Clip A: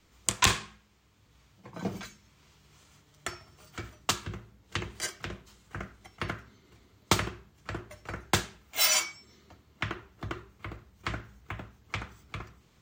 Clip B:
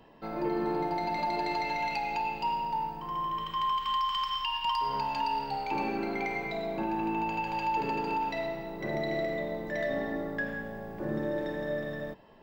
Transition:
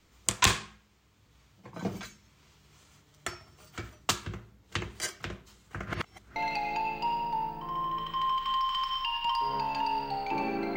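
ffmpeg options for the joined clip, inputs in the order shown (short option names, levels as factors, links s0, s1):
-filter_complex "[0:a]apad=whole_dur=10.76,atrim=end=10.76,asplit=2[s0][s1];[s0]atrim=end=5.872[s2];[s1]atrim=start=5.868:end=6.362,asetpts=PTS-STARTPTS,areverse[s3];[1:a]atrim=start=1.758:end=6.16[s4];[s2][s3]acrossfade=d=0.004:c1=hsin:c2=hsin[s5];[s5][s4]acrossfade=d=0.004:c1=hsin:c2=hsin"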